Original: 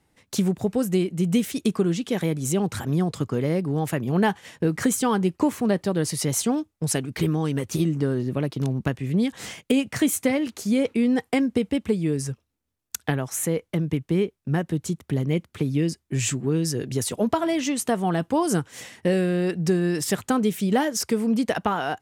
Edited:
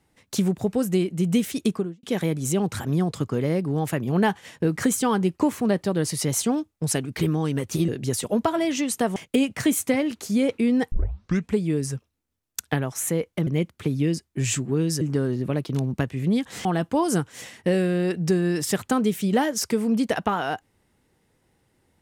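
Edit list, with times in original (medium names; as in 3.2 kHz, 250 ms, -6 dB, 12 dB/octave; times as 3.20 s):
1.65–2.03 s: studio fade out
7.88–9.52 s: swap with 16.76–18.04 s
11.28 s: tape start 0.65 s
13.83–15.22 s: delete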